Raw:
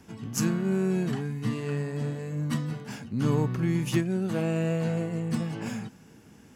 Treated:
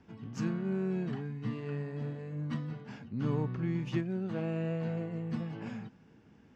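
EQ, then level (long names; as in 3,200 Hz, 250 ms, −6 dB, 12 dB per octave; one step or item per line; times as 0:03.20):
high-frequency loss of the air 190 metres
−6.5 dB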